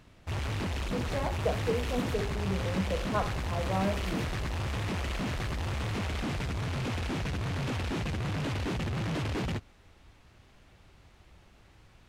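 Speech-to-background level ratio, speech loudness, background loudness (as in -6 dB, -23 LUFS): -1.5 dB, -35.0 LUFS, -33.5 LUFS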